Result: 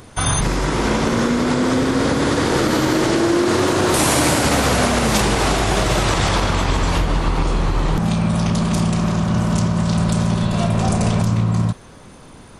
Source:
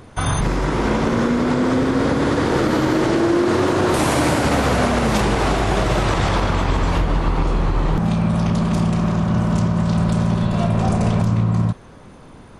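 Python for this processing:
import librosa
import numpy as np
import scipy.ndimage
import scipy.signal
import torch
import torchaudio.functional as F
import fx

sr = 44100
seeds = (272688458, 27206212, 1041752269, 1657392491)

y = fx.high_shelf(x, sr, hz=3500.0, db=10.5)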